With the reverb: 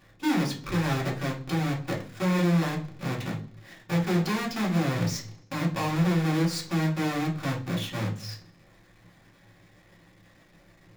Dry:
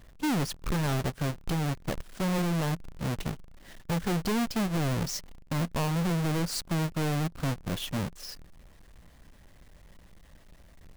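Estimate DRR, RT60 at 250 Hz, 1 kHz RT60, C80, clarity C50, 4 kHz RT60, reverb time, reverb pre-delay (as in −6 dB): −3.5 dB, 0.60 s, 0.45 s, 16.0 dB, 10.5 dB, 0.60 s, 0.50 s, 3 ms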